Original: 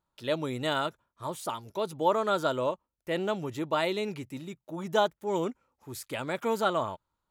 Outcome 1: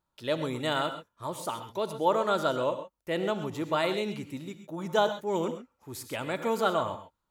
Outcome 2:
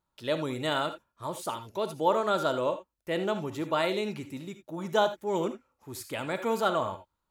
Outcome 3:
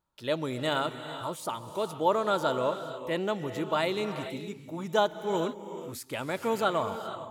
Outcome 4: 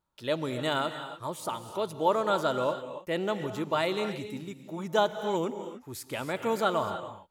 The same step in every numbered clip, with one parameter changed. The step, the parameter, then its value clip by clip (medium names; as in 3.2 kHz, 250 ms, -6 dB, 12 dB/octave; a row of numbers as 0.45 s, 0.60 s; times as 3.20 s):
gated-style reverb, gate: 150 ms, 100 ms, 490 ms, 320 ms